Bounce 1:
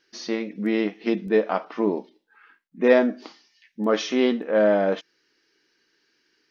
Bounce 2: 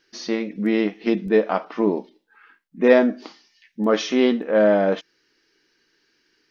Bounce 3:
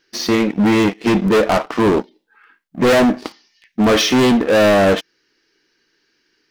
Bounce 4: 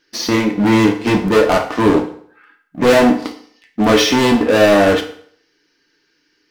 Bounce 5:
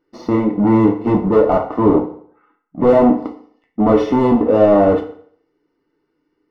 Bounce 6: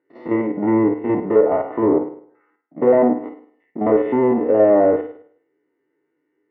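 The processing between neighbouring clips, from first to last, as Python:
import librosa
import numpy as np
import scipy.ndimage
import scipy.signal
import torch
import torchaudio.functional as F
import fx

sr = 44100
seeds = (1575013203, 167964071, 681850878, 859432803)

y1 = fx.low_shelf(x, sr, hz=90.0, db=10.0)
y1 = y1 * 10.0 ** (2.0 / 20.0)
y2 = fx.leveller(y1, sr, passes=2)
y2 = np.clip(10.0 ** (16.0 / 20.0) * y2, -1.0, 1.0) / 10.0 ** (16.0 / 20.0)
y2 = y2 * 10.0 ** (5.5 / 20.0)
y3 = fx.rev_fdn(y2, sr, rt60_s=0.58, lf_ratio=0.9, hf_ratio=0.85, size_ms=20.0, drr_db=3.5)
y4 = scipy.signal.savgol_filter(y3, 65, 4, mode='constant')
y5 = fx.spec_steps(y4, sr, hold_ms=50)
y5 = fx.cabinet(y5, sr, low_hz=140.0, low_slope=12, high_hz=2700.0, hz=(190.0, 390.0, 570.0, 1200.0, 1900.0), db=(-8, 5, 3, -5, 9))
y5 = fx.env_lowpass_down(y5, sr, base_hz=1800.0, full_db=-8.5)
y5 = y5 * 10.0 ** (-3.5 / 20.0)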